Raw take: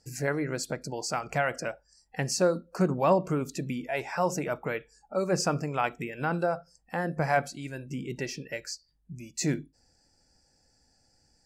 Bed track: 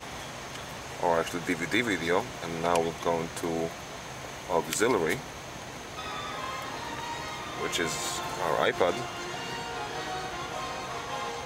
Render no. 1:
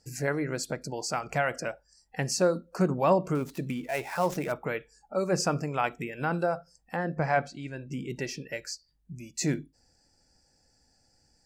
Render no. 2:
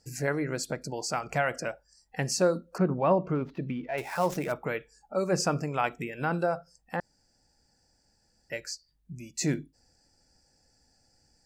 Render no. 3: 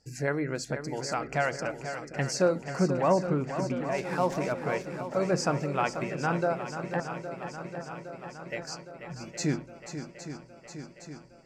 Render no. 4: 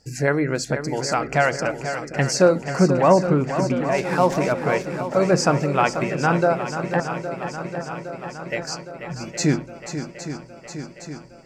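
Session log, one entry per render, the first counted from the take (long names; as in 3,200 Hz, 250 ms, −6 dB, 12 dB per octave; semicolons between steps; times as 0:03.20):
0:03.35–0:04.52: gap after every zero crossing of 0.061 ms; 0:06.96–0:07.92: high-frequency loss of the air 100 metres
0:02.78–0:03.98: high-frequency loss of the air 300 metres; 0:07.00–0:08.50: fill with room tone
high-frequency loss of the air 50 metres; feedback echo with a long and a short gap by turns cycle 813 ms, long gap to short 1.5 to 1, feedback 64%, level −10 dB
level +9 dB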